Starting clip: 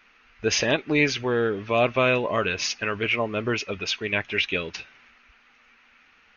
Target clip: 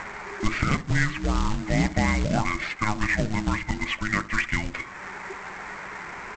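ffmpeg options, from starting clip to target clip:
ffmpeg -i in.wav -filter_complex "[0:a]asplit=2[link_01][link_02];[link_02]acompressor=mode=upward:threshold=-28dB:ratio=2.5,volume=-1dB[link_03];[link_01][link_03]amix=inputs=2:normalize=0,lowpass=frequency=2700:width=0.5412,lowpass=frequency=2700:width=1.3066,acompressor=threshold=-35dB:ratio=2,afreqshift=-430,asplit=2[link_04][link_05];[link_05]adelay=65,lowpass=frequency=1100:poles=1,volume=-14dB,asplit=2[link_06][link_07];[link_07]adelay=65,lowpass=frequency=1100:poles=1,volume=0.42,asplit=2[link_08][link_09];[link_09]adelay=65,lowpass=frequency=1100:poles=1,volume=0.42,asplit=2[link_10][link_11];[link_11]adelay=65,lowpass=frequency=1100:poles=1,volume=0.42[link_12];[link_04][link_06][link_08][link_10][link_12]amix=inputs=5:normalize=0,aresample=16000,acrusher=bits=3:mode=log:mix=0:aa=0.000001,aresample=44100,volume=5.5dB" out.wav

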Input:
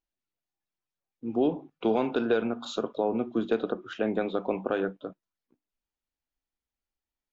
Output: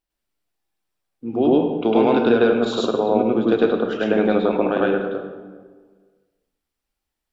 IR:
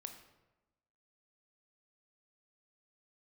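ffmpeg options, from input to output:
-filter_complex "[0:a]bandreject=frequency=6500:width=12,asplit=2[link_01][link_02];[1:a]atrim=start_sample=2205,asetrate=28224,aresample=44100,adelay=103[link_03];[link_02][link_03]afir=irnorm=-1:irlink=0,volume=5.5dB[link_04];[link_01][link_04]amix=inputs=2:normalize=0,volume=5dB"

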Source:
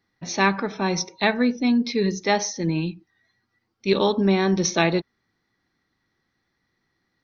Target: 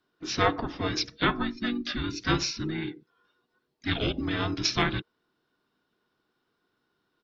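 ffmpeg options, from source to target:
ffmpeg -i in.wav -filter_complex "[0:a]asplit=4[link_01][link_02][link_03][link_04];[link_02]asetrate=22050,aresample=44100,atempo=2,volume=-10dB[link_05];[link_03]asetrate=35002,aresample=44100,atempo=1.25992,volume=-6dB[link_06];[link_04]asetrate=52444,aresample=44100,atempo=0.840896,volume=-16dB[link_07];[link_01][link_05][link_06][link_07]amix=inputs=4:normalize=0,acrossover=split=440|2100[link_08][link_09][link_10];[link_08]acompressor=threshold=-27dB:ratio=6[link_11];[link_11][link_09][link_10]amix=inputs=3:normalize=0,equalizer=frequency=480:width_type=o:width=0.81:gain=-7.5,afreqshift=-480,volume=-3dB" out.wav

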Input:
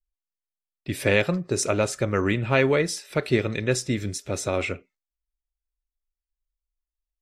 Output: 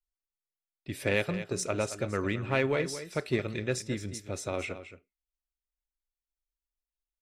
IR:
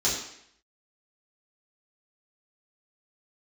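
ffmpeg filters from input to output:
-af "aeval=exprs='0.501*(cos(1*acos(clip(val(0)/0.501,-1,1)))-cos(1*PI/2))+0.00398*(cos(6*acos(clip(val(0)/0.501,-1,1)))-cos(6*PI/2))+0.0112*(cos(7*acos(clip(val(0)/0.501,-1,1)))-cos(7*PI/2))':channel_layout=same,aecho=1:1:222:0.251,volume=-7dB"

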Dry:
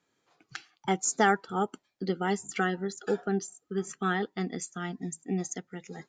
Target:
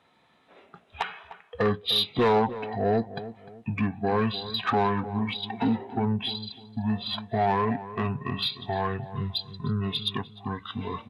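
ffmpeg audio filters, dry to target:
ffmpeg -i in.wav -filter_complex "[0:a]asplit=2[link_01][link_02];[link_02]acompressor=threshold=-37dB:ratio=6,volume=1dB[link_03];[link_01][link_03]amix=inputs=2:normalize=0,asoftclip=type=tanh:threshold=-14.5dB,asplit=2[link_04][link_05];[link_05]highpass=frequency=720:poles=1,volume=13dB,asoftclip=type=tanh:threshold=-14.5dB[link_06];[link_04][link_06]amix=inputs=2:normalize=0,lowpass=frequency=7900:poles=1,volume=-6dB,asetrate=24167,aresample=44100,asplit=2[link_07][link_08];[link_08]adelay=302,lowpass=frequency=1500:poles=1,volume=-13.5dB,asplit=2[link_09][link_10];[link_10]adelay=302,lowpass=frequency=1500:poles=1,volume=0.34,asplit=2[link_11][link_12];[link_12]adelay=302,lowpass=frequency=1500:poles=1,volume=0.34[link_13];[link_07][link_09][link_11][link_13]amix=inputs=4:normalize=0" out.wav

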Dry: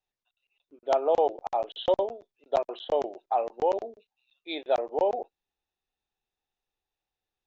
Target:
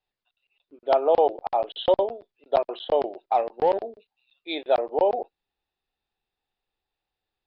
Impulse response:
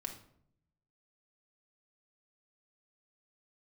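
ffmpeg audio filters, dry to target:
-filter_complex "[0:a]aresample=11025,aresample=44100,asettb=1/sr,asplit=3[link_01][link_02][link_03];[link_01]atrim=end=3.254[link_04];[link_02]atrim=start=3.25:end=3.83,asetpts=PTS-STARTPTS,afade=type=in:duration=0.004:curve=qsin,afade=type=out:start_time=0.576:duration=0.004:curve=qsin,aeval=exprs='0.2*(cos(1*acos(clip(val(0)/0.2,-1,1)))-cos(1*PI/2))+0.00562*(cos(7*acos(clip(val(0)/0.2,-1,1)))-cos(7*PI/2))':channel_layout=same[link_05];[link_03]atrim=start=3.826[link_06];[link_04][link_05]acrossfade=duration=0.004:curve1=hsin:curve2=qsin[link_07];[link_07][link_06]acrossfade=duration=0.004:curve1=qsin:curve2=hsin,volume=4dB"

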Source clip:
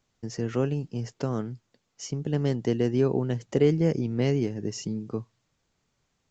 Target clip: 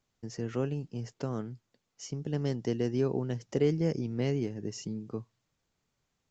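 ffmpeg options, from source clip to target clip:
ffmpeg -i in.wav -filter_complex "[0:a]asettb=1/sr,asplit=3[link_01][link_02][link_03];[link_01]atrim=end=2.114[link_04];[link_02]atrim=start=2.11:end=4.21,asetpts=PTS-STARTPTS,afade=type=in:duration=0.004:curve=qsin,afade=type=out:start_time=2.096:duration=0.004:curve=qsin,equalizer=frequency=5400:width=4.5:gain=7.5[link_05];[link_03]atrim=start=4.206[link_06];[link_04][link_05]acrossfade=duration=0.004:curve1=hsin:curve2=qsin[link_07];[link_07][link_06]acrossfade=duration=0.004:curve1=qsin:curve2=hsin,volume=-5.5dB" out.wav

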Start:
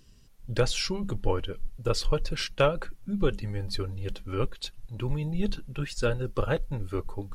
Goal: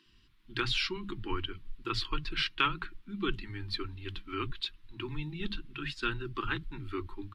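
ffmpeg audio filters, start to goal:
ffmpeg -i in.wav -filter_complex "[0:a]firequalizer=gain_entry='entry(180,0);entry(350,10);entry(530,-27);entry(980,8);entry(2000,11);entry(3600,12);entry(6300,-7)':delay=0.05:min_phase=1,acrossover=split=180[link_01][link_02];[link_01]adelay=60[link_03];[link_03][link_02]amix=inputs=2:normalize=0,volume=-8.5dB" out.wav

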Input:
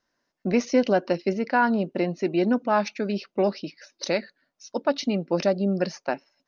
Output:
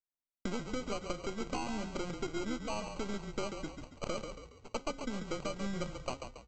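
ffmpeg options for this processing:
ffmpeg -i in.wav -filter_complex "[0:a]aeval=exprs='if(lt(val(0),0),0.251*val(0),val(0))':channel_layout=same,aemphasis=mode=reproduction:type=50fm,agate=range=-33dB:threshold=-47dB:ratio=3:detection=peak,acompressor=threshold=-39dB:ratio=8,bandreject=frequency=269.3:width_type=h:width=4,bandreject=frequency=538.6:width_type=h:width=4,bandreject=frequency=807.9:width_type=h:width=4,bandreject=frequency=1077.2:width_type=h:width=4,bandreject=frequency=1346.5:width_type=h:width=4,bandreject=frequency=1615.8:width_type=h:width=4,bandreject=frequency=1885.1:width_type=h:width=4,bandreject=frequency=2154.4:width_type=h:width=4,bandreject=frequency=2423.7:width_type=h:width=4,bandreject=frequency=2693:width_type=h:width=4,bandreject=frequency=2962.3:width_type=h:width=4,bandreject=frequency=3231.6:width_type=h:width=4,bandreject=frequency=3500.9:width_type=h:width=4,bandreject=frequency=3770.2:width_type=h:width=4,bandreject=frequency=4039.5:width_type=h:width=4,bandreject=frequency=4308.8:width_type=h:width=4,bandreject=frequency=4578.1:width_type=h:width=4,bandreject=frequency=4847.4:width_type=h:width=4,bandreject=frequency=5116.7:width_type=h:width=4,bandreject=frequency=5386:width_type=h:width=4,bandreject=frequency=5655.3:width_type=h:width=4,bandreject=frequency=5924.6:width_type=h:width=4,bandreject=frequency=6193.9:width_type=h:width=4,bandreject=frequency=6463.2:width_type=h:width=4,bandreject=frequency=6732.5:width_type=h:width=4,bandreject=frequency=7001.8:width_type=h:width=4,bandreject=frequency=7271.1:width_type=h:width=4,bandreject=frequency=7540.4:width_type=h:width=4,bandreject=frequency=7809.7:width_type=h:width=4,bandreject=frequency=8079:width_type=h:width=4,bandreject=frequency=8348.3:width_type=h:width=4,bandreject=frequency=8617.6:width_type=h:width=4,bandreject=frequency=8886.9:width_type=h:width=4,bandreject=frequency=9156.2:width_type=h:width=4,bandreject=frequency=9425.5:width_type=h:width=4,bandreject=frequency=9694.8:width_type=h:width=4,bandreject=frequency=9964.1:width_type=h:width=4,aresample=16000,acrusher=samples=9:mix=1:aa=0.000001,aresample=44100,asplit=6[link_01][link_02][link_03][link_04][link_05][link_06];[link_02]adelay=139,afreqshift=-30,volume=-7dB[link_07];[link_03]adelay=278,afreqshift=-60,volume=-14.3dB[link_08];[link_04]adelay=417,afreqshift=-90,volume=-21.7dB[link_09];[link_05]adelay=556,afreqshift=-120,volume=-29dB[link_10];[link_06]adelay=695,afreqshift=-150,volume=-36.3dB[link_11];[link_01][link_07][link_08][link_09][link_10][link_11]amix=inputs=6:normalize=0,volume=4.5dB" out.wav

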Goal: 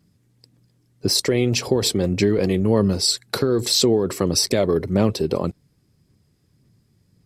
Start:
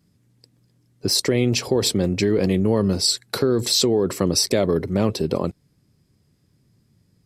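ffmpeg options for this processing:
ffmpeg -i in.wav -af "aphaser=in_gain=1:out_gain=1:delay=2.7:decay=0.24:speed=1.8:type=sinusoidal" out.wav

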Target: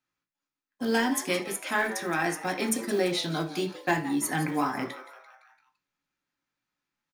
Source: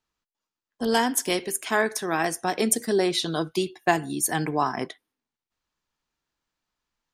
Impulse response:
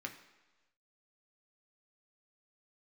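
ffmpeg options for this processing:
-filter_complex "[0:a]asoftclip=type=tanh:threshold=-10.5dB,acrusher=bits=6:mode=log:mix=0:aa=0.000001,asplit=6[link_01][link_02][link_03][link_04][link_05][link_06];[link_02]adelay=170,afreqshift=130,volume=-15.5dB[link_07];[link_03]adelay=340,afreqshift=260,volume=-21dB[link_08];[link_04]adelay=510,afreqshift=390,volume=-26.5dB[link_09];[link_05]adelay=680,afreqshift=520,volume=-32dB[link_10];[link_06]adelay=850,afreqshift=650,volume=-37.6dB[link_11];[link_01][link_07][link_08][link_09][link_10][link_11]amix=inputs=6:normalize=0[link_12];[1:a]atrim=start_sample=2205,atrim=end_sample=3969[link_13];[link_12][link_13]afir=irnorm=-1:irlink=0"

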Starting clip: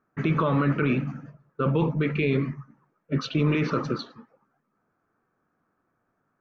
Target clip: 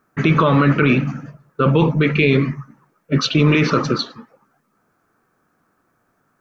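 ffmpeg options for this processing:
ffmpeg -i in.wav -af "highshelf=frequency=3100:gain=9.5,volume=8.5dB" out.wav

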